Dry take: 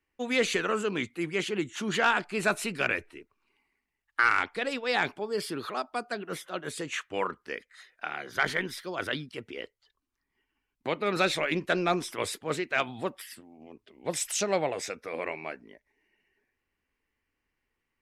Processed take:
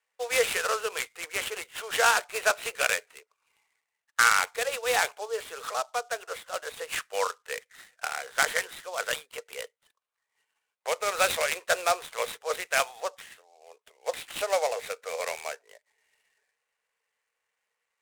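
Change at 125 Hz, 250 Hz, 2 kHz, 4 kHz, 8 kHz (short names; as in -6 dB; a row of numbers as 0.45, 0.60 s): -16.0, -19.0, +1.5, +2.5, +5.5 dB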